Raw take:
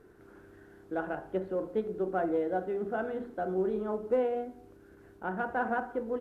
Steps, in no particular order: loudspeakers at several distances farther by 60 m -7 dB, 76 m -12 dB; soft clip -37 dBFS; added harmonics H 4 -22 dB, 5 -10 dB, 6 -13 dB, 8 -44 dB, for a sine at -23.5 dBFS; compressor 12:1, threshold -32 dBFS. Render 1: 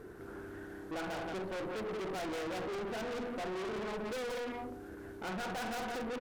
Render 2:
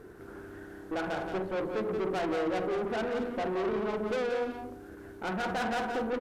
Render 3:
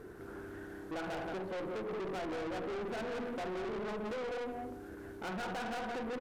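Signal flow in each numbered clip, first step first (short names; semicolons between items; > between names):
added harmonics > loudspeakers at several distances > soft clip > compressor; soft clip > compressor > added harmonics > loudspeakers at several distances; compressor > loudspeakers at several distances > added harmonics > soft clip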